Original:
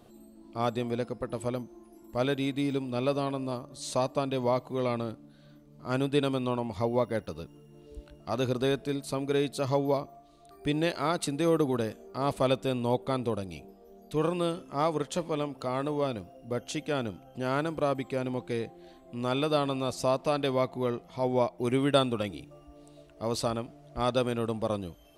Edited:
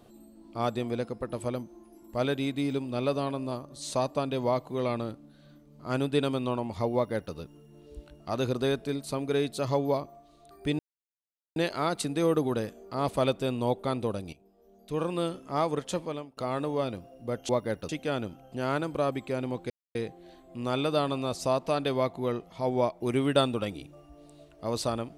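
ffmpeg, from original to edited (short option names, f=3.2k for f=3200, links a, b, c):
-filter_complex "[0:a]asplit=7[a][b][c][d][e][f][g];[a]atrim=end=10.79,asetpts=PTS-STARTPTS,afade=t=out:st=10.786:d=0.004:c=hsin,apad=pad_dur=0.77[h];[b]atrim=start=10.79:end=13.56,asetpts=PTS-STARTPTS,afade=t=in:d=0.004:c=hsin,afade=t=out:st=2.766:d=0.004:c=hsin:silence=0.16788[i];[c]atrim=start=13.56:end=15.6,asetpts=PTS-STARTPTS,afade=t=in:d=0.96:silence=0.16788,afade=t=out:st=1.63:d=0.41:silence=0.0794328[j];[d]atrim=start=15.6:end=16.722,asetpts=PTS-STARTPTS,afade=t=in:d=0.004:c=hsin:silence=0.0794328[k];[e]atrim=start=6.938:end=7.342[l];[f]atrim=start=16.718:end=18.53,asetpts=PTS-STARTPTS,afade=t=out:st=1.808:d=0.004:c=hsin,apad=pad_dur=0.25[m];[g]atrim=start=18.53,asetpts=PTS-STARTPTS,afade=t=in:d=0.004:c=hsin[n];[h][i][j][k]concat=n=4:v=0:a=1[o];[o][l]acrossfade=d=0.004:c1=hsin:c2=hsin[p];[m][n]concat=n=2:v=0:a=1[q];[p][q]acrossfade=d=0.004:c1=hsin:c2=hsin"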